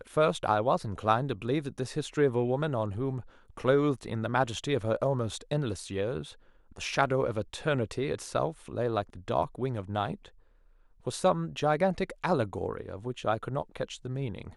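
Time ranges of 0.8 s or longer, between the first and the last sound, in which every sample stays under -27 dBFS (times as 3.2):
10.14–11.07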